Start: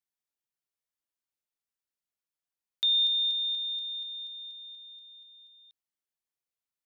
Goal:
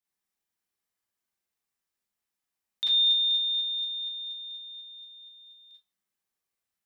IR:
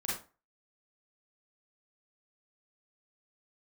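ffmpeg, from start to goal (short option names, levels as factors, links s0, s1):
-filter_complex "[1:a]atrim=start_sample=2205[s0];[0:a][s0]afir=irnorm=-1:irlink=0,volume=1.33"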